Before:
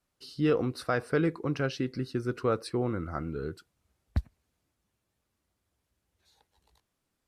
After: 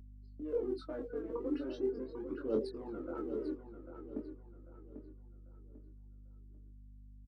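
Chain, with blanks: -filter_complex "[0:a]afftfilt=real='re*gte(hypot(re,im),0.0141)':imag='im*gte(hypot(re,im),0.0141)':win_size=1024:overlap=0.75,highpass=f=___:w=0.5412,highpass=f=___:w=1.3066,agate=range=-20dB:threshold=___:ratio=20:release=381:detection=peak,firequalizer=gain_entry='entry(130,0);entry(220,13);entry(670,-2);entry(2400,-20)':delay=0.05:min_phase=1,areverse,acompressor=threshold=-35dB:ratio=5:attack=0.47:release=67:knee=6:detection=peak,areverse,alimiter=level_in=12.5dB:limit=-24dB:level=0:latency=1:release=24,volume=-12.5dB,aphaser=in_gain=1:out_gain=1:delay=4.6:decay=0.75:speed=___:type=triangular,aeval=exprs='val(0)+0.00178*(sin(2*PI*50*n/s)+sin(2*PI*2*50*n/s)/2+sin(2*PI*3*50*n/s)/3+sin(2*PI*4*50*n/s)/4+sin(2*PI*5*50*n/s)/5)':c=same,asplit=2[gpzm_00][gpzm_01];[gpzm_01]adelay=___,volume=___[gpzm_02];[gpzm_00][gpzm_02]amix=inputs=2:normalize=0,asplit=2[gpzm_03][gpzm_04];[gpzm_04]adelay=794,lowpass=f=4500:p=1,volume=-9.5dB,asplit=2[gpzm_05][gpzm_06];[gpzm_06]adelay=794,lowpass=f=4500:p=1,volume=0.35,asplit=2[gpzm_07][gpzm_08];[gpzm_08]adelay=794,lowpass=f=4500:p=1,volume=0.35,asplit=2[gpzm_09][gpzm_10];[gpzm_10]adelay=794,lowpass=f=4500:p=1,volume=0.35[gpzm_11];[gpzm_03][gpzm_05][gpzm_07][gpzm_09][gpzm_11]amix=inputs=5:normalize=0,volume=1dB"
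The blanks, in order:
310, 310, -50dB, 0.39, 23, -3.5dB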